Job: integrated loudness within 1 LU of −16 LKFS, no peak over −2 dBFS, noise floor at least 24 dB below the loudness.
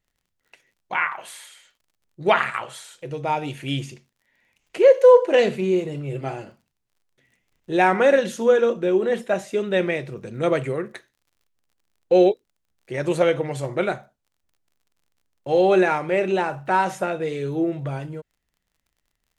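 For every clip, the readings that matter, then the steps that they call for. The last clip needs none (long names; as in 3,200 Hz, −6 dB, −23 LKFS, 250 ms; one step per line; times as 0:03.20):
crackle rate 41 per second; integrated loudness −21.0 LKFS; sample peak −3.5 dBFS; target loudness −16.0 LKFS
→ click removal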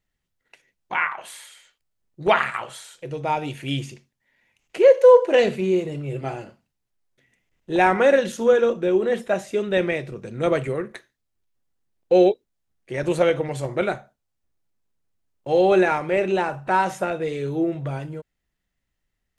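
crackle rate 0.10 per second; integrated loudness −21.0 LKFS; sample peak −3.5 dBFS; target loudness −16.0 LKFS
→ level +5 dB
brickwall limiter −2 dBFS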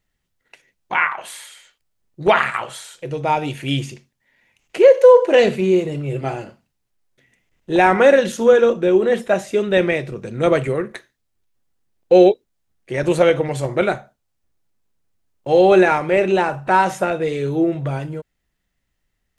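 integrated loudness −16.5 LKFS; sample peak −2.0 dBFS; background noise floor −74 dBFS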